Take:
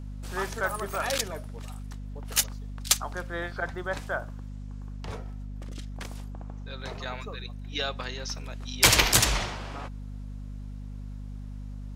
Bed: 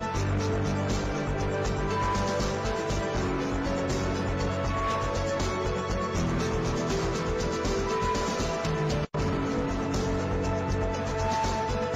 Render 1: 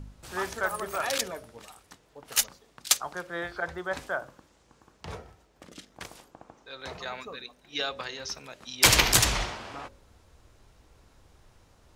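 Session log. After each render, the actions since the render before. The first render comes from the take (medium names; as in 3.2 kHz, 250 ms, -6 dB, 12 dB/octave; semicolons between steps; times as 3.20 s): de-hum 50 Hz, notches 12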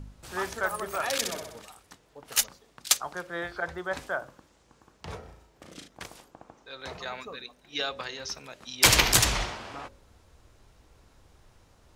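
1.16–1.61 s: flutter echo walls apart 10.8 m, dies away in 0.75 s; 5.19–5.88 s: flutter echo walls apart 6.2 m, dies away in 0.42 s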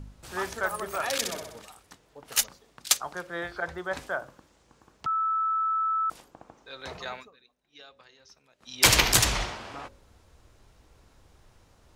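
5.06–6.10 s: bleep 1.31 kHz -23.5 dBFS; 7.12–8.77 s: dip -19 dB, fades 0.19 s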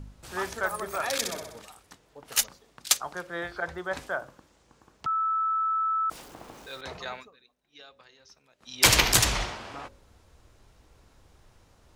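0.67–1.57 s: band-stop 2.9 kHz; 6.11–6.81 s: jump at every zero crossing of -44.5 dBFS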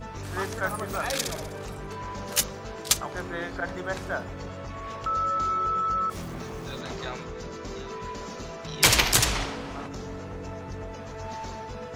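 add bed -9 dB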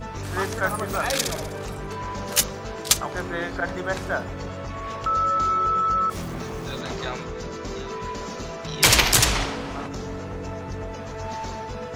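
trim +4.5 dB; peak limiter -3 dBFS, peak gain reduction 3 dB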